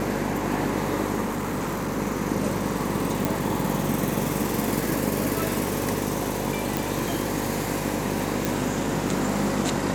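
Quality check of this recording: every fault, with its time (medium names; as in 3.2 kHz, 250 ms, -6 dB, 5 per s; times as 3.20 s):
buzz 50 Hz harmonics 11 -31 dBFS
crackle 18 per s -32 dBFS
1.23–1.99 s: clipped -23.5 dBFS
3.25 s: pop
6.77 s: pop
8.45 s: pop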